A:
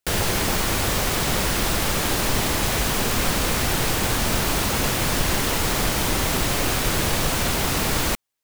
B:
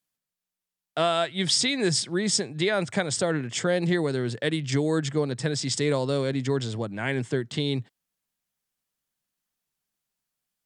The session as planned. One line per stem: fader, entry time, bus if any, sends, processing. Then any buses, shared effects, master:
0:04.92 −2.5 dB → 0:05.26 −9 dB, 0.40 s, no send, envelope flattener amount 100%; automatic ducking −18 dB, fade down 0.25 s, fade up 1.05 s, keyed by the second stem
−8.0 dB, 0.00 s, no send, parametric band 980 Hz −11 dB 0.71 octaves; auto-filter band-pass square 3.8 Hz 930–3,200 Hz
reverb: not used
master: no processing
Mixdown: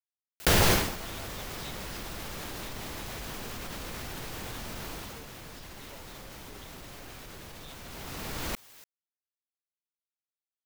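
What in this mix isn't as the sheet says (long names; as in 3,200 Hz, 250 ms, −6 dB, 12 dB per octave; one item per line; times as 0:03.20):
stem B −8.0 dB → −16.0 dB
master: extra parametric band 9,000 Hz −3.5 dB 0.75 octaves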